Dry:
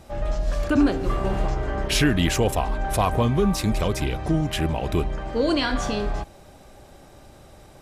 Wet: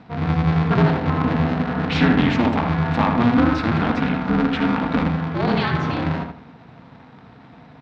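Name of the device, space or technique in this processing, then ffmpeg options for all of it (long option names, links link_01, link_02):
ring modulator pedal into a guitar cabinet: -filter_complex "[0:a]aeval=exprs='val(0)*sgn(sin(2*PI*120*n/s))':channel_layout=same,highpass=98,equalizer=frequency=140:width_type=q:width=4:gain=4,equalizer=frequency=260:width_type=q:width=4:gain=7,equalizer=frequency=380:width_type=q:width=4:gain=-9,equalizer=frequency=570:width_type=q:width=4:gain=-7,equalizer=frequency=3000:width_type=q:width=4:gain=-5,lowpass=frequency=3600:width=0.5412,lowpass=frequency=3600:width=1.3066,asettb=1/sr,asplit=3[link_01][link_02][link_03];[link_01]atrim=end=3.354[link_04];[link_02]atrim=start=3.35:end=4.98,asetpts=PTS-STARTPTS,afade=type=in:duration=0.004:curve=qsin,afade=type=out:start_time=1.626:duration=0.004:curve=qsin,equalizer=frequency=1400:width=3.8:gain=6[link_05];[link_03]atrim=start=4.976[link_06];[link_04][link_05]acrossfade=duration=0.004:curve1=hsin:curve2=qsin[link_07];[link_07][link_06]acrossfade=duration=0.004:curve1=qsin:curve2=hsin,asplit=2[link_08][link_09];[link_09]adelay=80,lowpass=frequency=2500:poles=1,volume=-4.5dB,asplit=2[link_10][link_11];[link_11]adelay=80,lowpass=frequency=2500:poles=1,volume=0.31,asplit=2[link_12][link_13];[link_13]adelay=80,lowpass=frequency=2500:poles=1,volume=0.31,asplit=2[link_14][link_15];[link_15]adelay=80,lowpass=frequency=2500:poles=1,volume=0.31[link_16];[link_08][link_10][link_12][link_14][link_16]amix=inputs=5:normalize=0,volume=2.5dB"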